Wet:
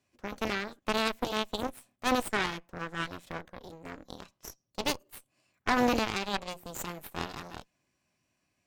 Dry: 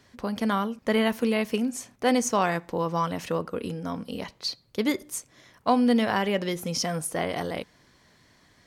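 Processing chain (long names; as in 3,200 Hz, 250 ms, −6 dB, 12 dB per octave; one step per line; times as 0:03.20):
notch comb filter 460 Hz
formants moved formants +5 semitones
harmonic generator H 4 −7 dB, 7 −20 dB, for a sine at −10.5 dBFS
level −7 dB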